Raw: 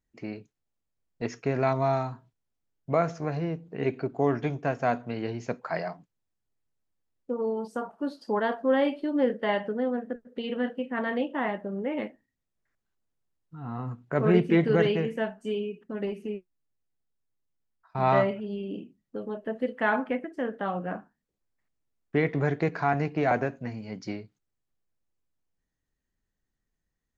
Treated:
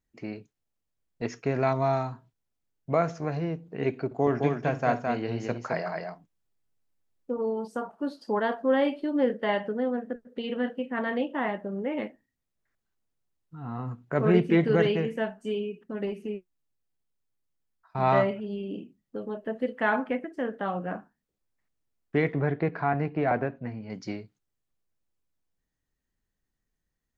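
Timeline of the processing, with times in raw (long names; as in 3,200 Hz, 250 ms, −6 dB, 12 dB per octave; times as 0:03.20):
0:04.05–0:07.38: multi-tap delay 61/214 ms −15.5/−4 dB
0:22.33–0:23.90: high-frequency loss of the air 290 metres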